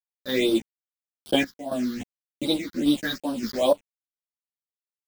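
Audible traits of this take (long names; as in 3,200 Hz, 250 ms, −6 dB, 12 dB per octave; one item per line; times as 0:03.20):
a quantiser's noise floor 6 bits, dither none
phaser sweep stages 6, 2.5 Hz, lowest notch 660–2,000 Hz
sample-and-hold tremolo, depth 85%
a shimmering, thickened sound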